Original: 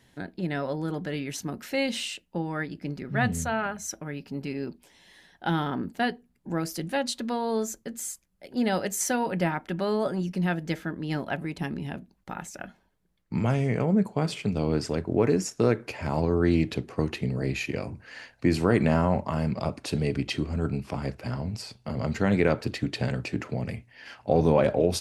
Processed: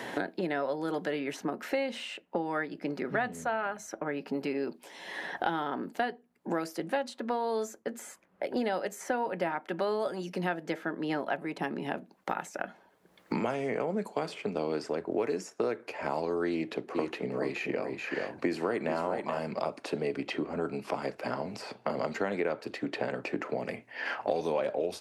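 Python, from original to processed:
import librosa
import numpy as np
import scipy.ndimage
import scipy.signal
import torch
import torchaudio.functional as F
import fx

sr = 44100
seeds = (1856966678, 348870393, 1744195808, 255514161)

y = fx.echo_single(x, sr, ms=432, db=-7.5, at=(16.94, 19.38), fade=0.02)
y = scipy.signal.sosfilt(scipy.signal.butter(2, 420.0, 'highpass', fs=sr, output='sos'), y)
y = fx.high_shelf(y, sr, hz=2100.0, db=-10.5)
y = fx.band_squash(y, sr, depth_pct=100)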